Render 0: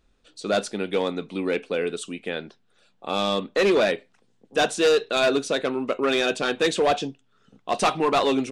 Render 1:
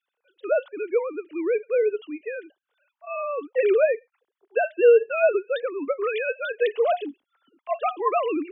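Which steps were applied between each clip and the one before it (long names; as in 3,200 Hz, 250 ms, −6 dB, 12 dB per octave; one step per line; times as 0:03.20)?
three sine waves on the formant tracks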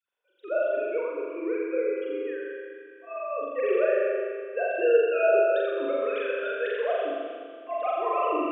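on a send: flutter between parallel walls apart 7.3 metres, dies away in 1.4 s
on the sum: four-comb reverb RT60 2.2 s, combs from 31 ms, DRR 1.5 dB
level −8.5 dB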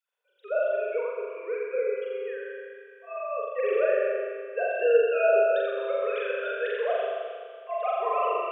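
Butterworth high-pass 400 Hz 96 dB per octave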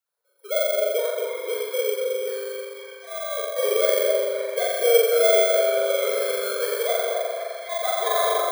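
samples in bit-reversed order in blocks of 16 samples
echo through a band-pass that steps 256 ms, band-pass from 740 Hz, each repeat 0.7 octaves, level −1.5 dB
level +3 dB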